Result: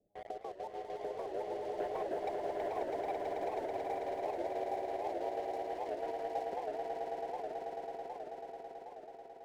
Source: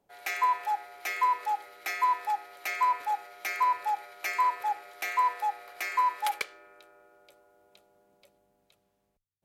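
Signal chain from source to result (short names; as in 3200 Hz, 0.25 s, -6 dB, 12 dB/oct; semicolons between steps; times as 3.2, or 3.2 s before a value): trilling pitch shifter +11.5 st, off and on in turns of 78 ms; Doppler pass-by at 1.93, 17 m/s, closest 8.9 m; steep low-pass 690 Hz 72 dB/oct; sample leveller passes 3; compressor, threshold -55 dBFS, peak gain reduction 14 dB; on a send: swelling echo 0.109 s, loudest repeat 8, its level -6.5 dB; on the sum: record warp 78 rpm, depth 160 cents; gain +15.5 dB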